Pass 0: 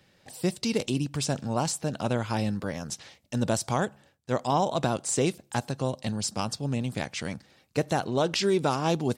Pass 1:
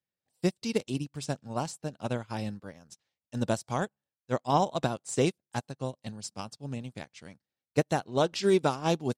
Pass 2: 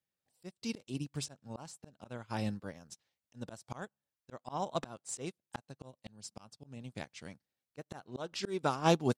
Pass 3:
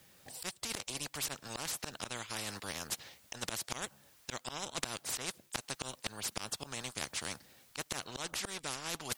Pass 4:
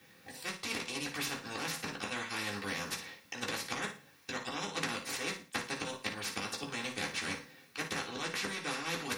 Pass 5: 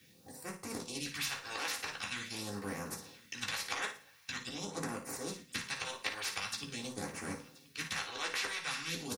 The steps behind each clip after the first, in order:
upward expansion 2.5:1, over -45 dBFS; trim +2.5 dB
dynamic bell 1.3 kHz, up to +4 dB, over -43 dBFS, Q 1.5; slow attack 428 ms
reverse; compression 6:1, threshold -43 dBFS, peak gain reduction 20.5 dB; reverse; spectrum-flattening compressor 4:1; trim +12.5 dB
flutter echo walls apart 9.6 m, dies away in 0.34 s; reverberation, pre-delay 3 ms, DRR -2.5 dB; trim -5 dB
phase shifter stages 2, 0.45 Hz, lowest notch 160–3400 Hz; delay 1027 ms -22 dB

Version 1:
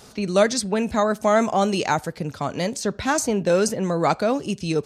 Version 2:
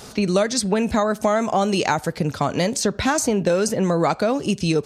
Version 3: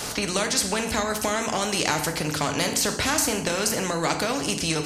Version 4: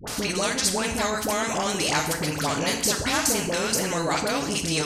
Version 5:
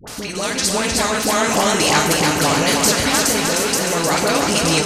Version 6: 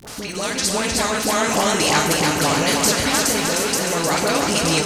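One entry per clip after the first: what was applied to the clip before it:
compression, threshold -23 dBFS, peak gain reduction 11 dB; trim +7 dB
band-stop 3.6 kHz, Q 16; FDN reverb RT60 0.48 s, low-frequency decay 1.55×, high-frequency decay 0.95×, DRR 6.5 dB; spectrum-flattening compressor 2:1
phase dispersion highs, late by 75 ms, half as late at 790 Hz
level rider; on a send: thinning echo 307 ms, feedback 61%, high-pass 150 Hz, level -4 dB; on the sum: endings held to a fixed fall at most 100 dB/s; trim -1 dB
crackle 86 per s -26 dBFS; trim -2 dB

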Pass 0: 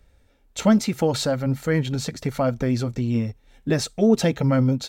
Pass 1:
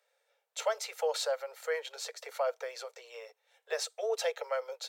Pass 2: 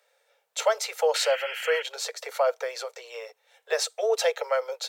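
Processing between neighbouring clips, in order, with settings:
steep high-pass 450 Hz 96 dB/octave; trim -7.5 dB
painted sound noise, 1.14–1.83 s, 1.3–3.3 kHz -43 dBFS; trim +8 dB

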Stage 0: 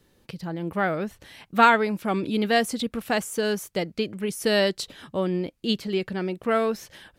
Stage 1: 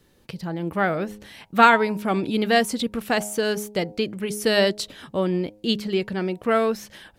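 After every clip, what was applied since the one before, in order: de-hum 104.4 Hz, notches 9; trim +2.5 dB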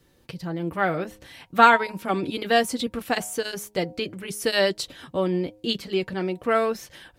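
comb of notches 210 Hz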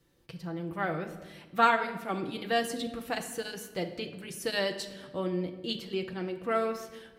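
simulated room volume 1000 m³, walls mixed, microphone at 0.72 m; trim -8.5 dB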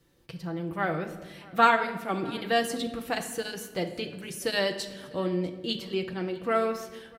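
delay 647 ms -23.5 dB; trim +3 dB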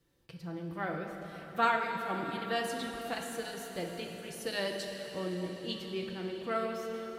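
plate-style reverb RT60 5 s, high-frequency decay 1×, DRR 3.5 dB; trim -8 dB

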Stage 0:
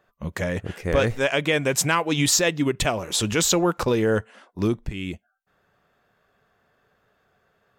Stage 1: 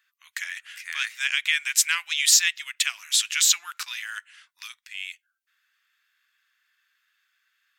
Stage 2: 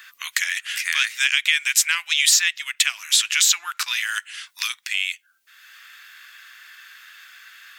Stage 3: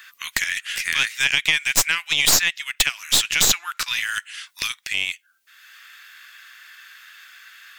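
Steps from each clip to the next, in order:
inverse Chebyshev high-pass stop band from 530 Hz, stop band 60 dB; trim +3.5 dB
three bands compressed up and down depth 70%; trim +5 dB
tracing distortion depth 0.04 ms

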